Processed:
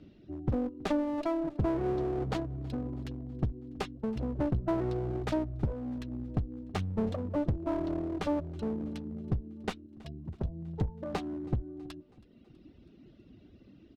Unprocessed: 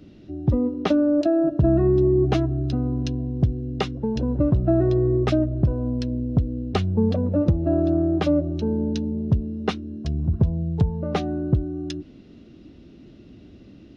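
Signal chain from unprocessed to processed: tracing distortion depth 0.37 ms; low-pass 5 kHz 12 dB/octave; reverb removal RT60 1.2 s; 9.86–10.44 s: high-pass 350 Hz 6 dB/octave; one-sided clip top -28 dBFS; feedback delay 324 ms, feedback 58%, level -24 dB; trim -6.5 dB

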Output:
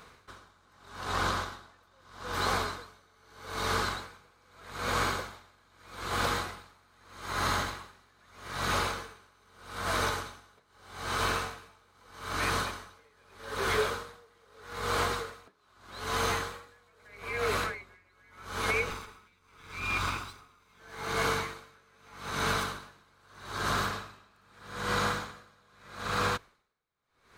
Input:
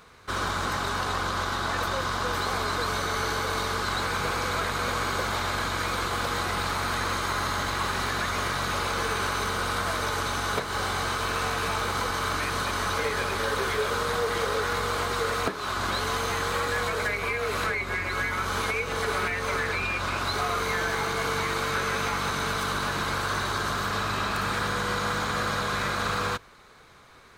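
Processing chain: 18.90–20.80 s: comb filter that takes the minimum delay 0.81 ms; logarithmic tremolo 0.8 Hz, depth 36 dB

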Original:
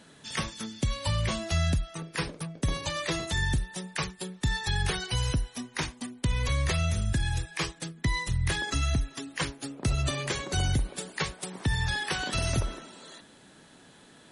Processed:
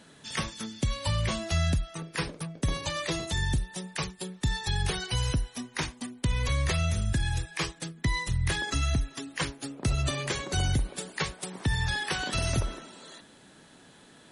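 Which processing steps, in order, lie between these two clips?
3.06–4.97 s: dynamic bell 1.6 kHz, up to -4 dB, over -46 dBFS, Q 1.3

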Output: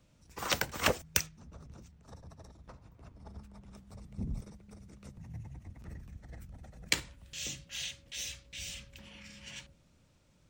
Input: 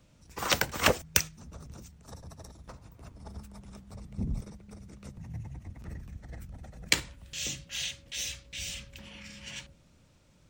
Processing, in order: 1.26–3.74 s: peaking EQ 14 kHz -12 dB 1.5 oct; trim -4.5 dB

